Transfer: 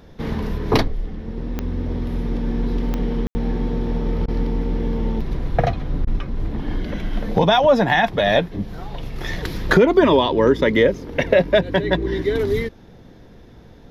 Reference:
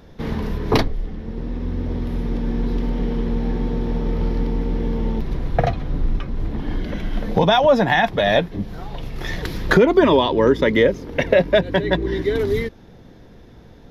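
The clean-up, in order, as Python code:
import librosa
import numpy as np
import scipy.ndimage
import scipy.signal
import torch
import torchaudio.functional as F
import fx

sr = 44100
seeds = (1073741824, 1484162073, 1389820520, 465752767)

y = fx.fix_declick_ar(x, sr, threshold=10.0)
y = fx.fix_ambience(y, sr, seeds[0], print_start_s=12.69, print_end_s=13.19, start_s=3.27, end_s=3.35)
y = fx.fix_interpolate(y, sr, at_s=(4.26, 6.05), length_ms=20.0)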